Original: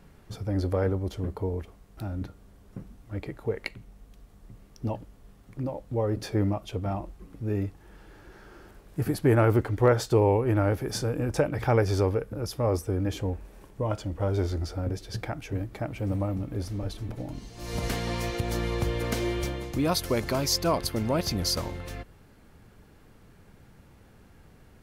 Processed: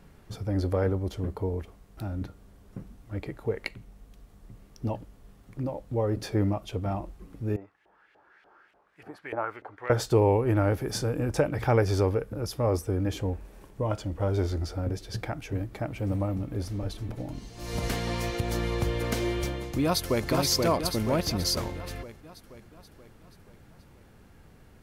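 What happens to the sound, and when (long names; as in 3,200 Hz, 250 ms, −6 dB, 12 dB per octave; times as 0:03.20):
0:07.56–0:09.90: auto-filter band-pass saw up 3.4 Hz 620–2,800 Hz
0:19.83–0:20.28: delay throw 480 ms, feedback 55%, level −2.5 dB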